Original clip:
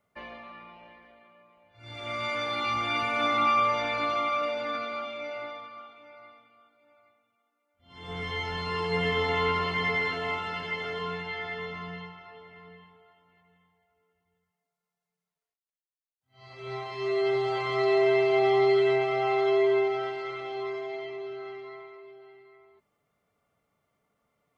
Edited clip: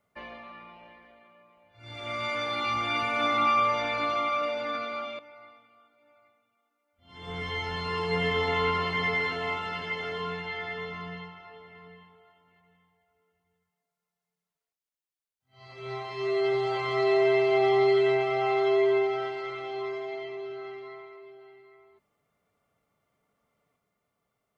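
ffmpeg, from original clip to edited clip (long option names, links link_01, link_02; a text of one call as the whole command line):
ffmpeg -i in.wav -filter_complex "[0:a]asplit=2[link_01][link_02];[link_01]atrim=end=5.192[link_03];[link_02]atrim=start=5.998[link_04];[link_03][link_04]acrossfade=duration=0.004:curve1=hsin:curve2=hsin" out.wav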